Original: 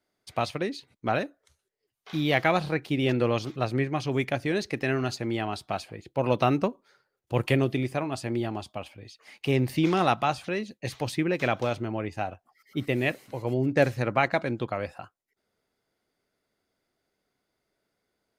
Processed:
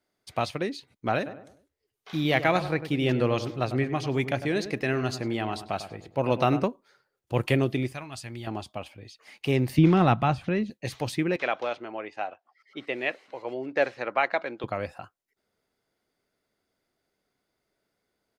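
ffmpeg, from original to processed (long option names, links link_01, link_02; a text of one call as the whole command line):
ffmpeg -i in.wav -filter_complex "[0:a]asplit=3[link_01][link_02][link_03];[link_01]afade=type=out:start_time=1.25:duration=0.02[link_04];[link_02]asplit=2[link_05][link_06];[link_06]adelay=100,lowpass=frequency=1700:poles=1,volume=-11dB,asplit=2[link_07][link_08];[link_08]adelay=100,lowpass=frequency=1700:poles=1,volume=0.41,asplit=2[link_09][link_10];[link_10]adelay=100,lowpass=frequency=1700:poles=1,volume=0.41,asplit=2[link_11][link_12];[link_12]adelay=100,lowpass=frequency=1700:poles=1,volume=0.41[link_13];[link_05][link_07][link_09][link_11][link_13]amix=inputs=5:normalize=0,afade=type=in:start_time=1.25:duration=0.02,afade=type=out:start_time=6.63:duration=0.02[link_14];[link_03]afade=type=in:start_time=6.63:duration=0.02[link_15];[link_04][link_14][link_15]amix=inputs=3:normalize=0,asettb=1/sr,asplit=3[link_16][link_17][link_18];[link_16]atrim=end=7.924[link_19];[link_17]atrim=start=7.92:end=8.47,asetpts=PTS-STARTPTS,afade=type=in:duration=0.004:curve=qsin,afade=type=out:start_time=0.546:duration=0.004:curve=qsin,equalizer=frequency=400:width=0.43:gain=-14[link_20];[link_18]atrim=start=8.466[link_21];[link_19][link_20]acrossfade=duration=0.004:curve1=hsin:curve2=qsin[link_22];[link_22][link_21]acrossfade=duration=0.004:curve1=qsin:curve2=hsin,asettb=1/sr,asplit=3[link_23][link_24][link_25];[link_23]atrim=end=9.784[link_26];[link_24]atrim=start=9.78:end=10.7,asetpts=PTS-STARTPTS,afade=type=in:duration=0.004:curve=qsin,afade=type=out:start_time=0.916:duration=0.004:curve=qsin,bass=frequency=250:gain=11,treble=frequency=4000:gain=-11[link_27];[link_25]atrim=start=10.696[link_28];[link_26][link_27]acrossfade=duration=0.004:curve1=hsin:curve2=qsin[link_29];[link_29][link_28]acrossfade=duration=0.004:curve1=qsin:curve2=hsin,asettb=1/sr,asplit=3[link_30][link_31][link_32];[link_30]atrim=end=11.364[link_33];[link_31]atrim=start=11.36:end=14.64,asetpts=PTS-STARTPTS,afade=type=in:duration=0.004:curve=qsin,afade=type=out:start_time=3.276:duration=0.004:curve=qsin,highpass=470,lowpass=4000[link_34];[link_32]atrim=start=14.636[link_35];[link_33][link_34]acrossfade=duration=0.004:curve1=hsin:curve2=qsin[link_36];[link_36][link_35]acrossfade=duration=0.004:curve1=qsin:curve2=hsin" out.wav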